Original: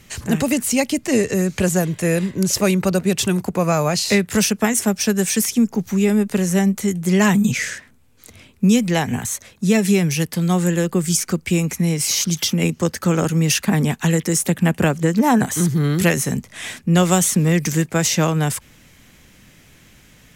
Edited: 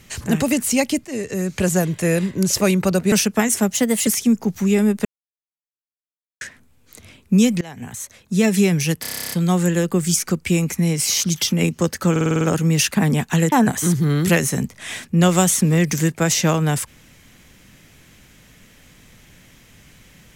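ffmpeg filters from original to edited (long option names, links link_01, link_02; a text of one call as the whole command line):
ffmpeg -i in.wav -filter_complex "[0:a]asplit=25[link_01][link_02][link_03][link_04][link_05][link_06][link_07][link_08][link_09][link_10][link_11][link_12][link_13][link_14][link_15][link_16][link_17][link_18][link_19][link_20][link_21][link_22][link_23][link_24][link_25];[link_01]atrim=end=1.05,asetpts=PTS-STARTPTS,afade=type=out:start_time=1.046:duration=0.004:curve=hsin:silence=0.199526[link_26];[link_02]atrim=start=1.05:end=3.122,asetpts=PTS-STARTPTS,afade=type=in:duration=0.68:silence=0.199526[link_27];[link_03]atrim=start=4.368:end=4.974[link_28];[link_04]atrim=start=4.97:end=5.38,asetpts=PTS-STARTPTS,asetrate=51597,aresample=44100[link_29];[link_05]atrim=start=5.376:end=6.36,asetpts=PTS-STARTPTS,afade=type=out:start_time=0.98:duration=0.004:curve=hsin[link_30];[link_06]atrim=start=6.36:end=7.72,asetpts=PTS-STARTPTS,volume=0[link_31];[link_07]atrim=start=7.72:end=8.92,asetpts=PTS-STARTPTS,afade=type=in:duration=0.004:curve=hsin,afade=type=out:start_time=1.196:duration=0.004:curve=hsin:silence=0.0707946[link_32];[link_08]atrim=start=8.92:end=10.352,asetpts=PTS-STARTPTS,afade=type=in:duration=0.89:silence=0.0707946[link_33];[link_09]atrim=start=10.318:end=10.352[link_34];[link_10]atrim=start=10.318:end=10.352[link_35];[link_11]atrim=start=10.318:end=10.352[link_36];[link_12]atrim=start=10.318:end=10.352[link_37];[link_13]atrim=start=10.318:end=10.352[link_38];[link_14]atrim=start=10.318:end=10.352[link_39];[link_15]atrim=start=10.318:end=10.352[link_40];[link_16]atrim=start=10.318:end=10.352[link_41];[link_17]atrim=start=10.318:end=10.352[link_42];[link_18]atrim=start=10.318:end=13.172[link_43];[link_19]atrim=start=13.118:end=13.172[link_44];[link_20]atrim=start=13.118:end=13.172[link_45];[link_21]atrim=start=13.118:end=13.172[link_46];[link_22]atrim=start=13.118:end=13.172[link_47];[link_23]atrim=start=13.118:end=13.172[link_48];[link_24]atrim=start=13.118:end=14.232[link_49];[link_25]atrim=start=15.258[link_50];[link_26][link_27]concat=n=2:v=0:a=1[link_51];[link_51][link_28]acrossfade=duration=0.004:curve1=hsin:curve2=hsin[link_52];[link_52][link_29]acrossfade=duration=0.004:curve1=hsin:curve2=hsin[link_53];[link_30][link_31][link_32][link_33]concat=n=4:v=0:a=1[link_54];[link_53][link_54]acrossfade=duration=0.004:curve1=hsin:curve2=hsin[link_55];[link_55][link_34]acrossfade=duration=0.004:curve1=hsin:curve2=hsin[link_56];[link_56][link_35]acrossfade=duration=0.004:curve1=hsin:curve2=hsin[link_57];[link_57][link_36]acrossfade=duration=0.004:curve1=hsin:curve2=hsin[link_58];[link_58][link_37]acrossfade=duration=0.004:curve1=hsin:curve2=hsin[link_59];[link_59][link_38]acrossfade=duration=0.004:curve1=hsin:curve2=hsin[link_60];[link_60][link_39]acrossfade=duration=0.004:curve1=hsin:curve2=hsin[link_61];[link_61][link_40]acrossfade=duration=0.004:curve1=hsin:curve2=hsin[link_62];[link_62][link_41]acrossfade=duration=0.004:curve1=hsin:curve2=hsin[link_63];[link_63][link_42]acrossfade=duration=0.004:curve1=hsin:curve2=hsin[link_64];[link_64][link_43]acrossfade=duration=0.004:curve1=hsin:curve2=hsin[link_65];[link_65][link_44]acrossfade=duration=0.004:curve1=hsin:curve2=hsin[link_66];[link_66][link_45]acrossfade=duration=0.004:curve1=hsin:curve2=hsin[link_67];[link_67][link_46]acrossfade=duration=0.004:curve1=hsin:curve2=hsin[link_68];[link_68][link_47]acrossfade=duration=0.004:curve1=hsin:curve2=hsin[link_69];[link_69][link_48]acrossfade=duration=0.004:curve1=hsin:curve2=hsin[link_70];[link_70][link_49]acrossfade=duration=0.004:curve1=hsin:curve2=hsin[link_71];[link_71][link_50]acrossfade=duration=0.004:curve1=hsin:curve2=hsin" out.wav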